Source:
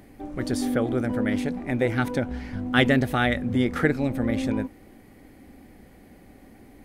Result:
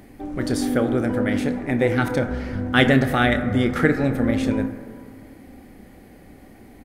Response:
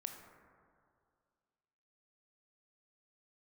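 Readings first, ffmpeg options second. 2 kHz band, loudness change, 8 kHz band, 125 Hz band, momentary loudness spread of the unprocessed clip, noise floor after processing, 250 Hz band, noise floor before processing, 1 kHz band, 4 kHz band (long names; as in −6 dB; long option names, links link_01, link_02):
+4.0 dB, +4.0 dB, +3.5 dB, +4.0 dB, 10 LU, −47 dBFS, +3.5 dB, −51 dBFS, +4.0 dB, +3.5 dB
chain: -filter_complex "[0:a]asplit=2[link_01][link_02];[link_02]adelay=30,volume=-13dB[link_03];[link_01][link_03]amix=inputs=2:normalize=0,asplit=2[link_04][link_05];[1:a]atrim=start_sample=2205[link_06];[link_05][link_06]afir=irnorm=-1:irlink=0,volume=6.5dB[link_07];[link_04][link_07]amix=inputs=2:normalize=0,volume=-4dB"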